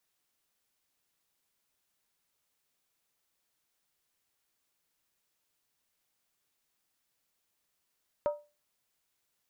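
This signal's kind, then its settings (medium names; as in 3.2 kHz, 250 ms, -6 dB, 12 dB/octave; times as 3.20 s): skin hit, lowest mode 590 Hz, decay 0.29 s, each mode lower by 9 dB, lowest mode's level -23 dB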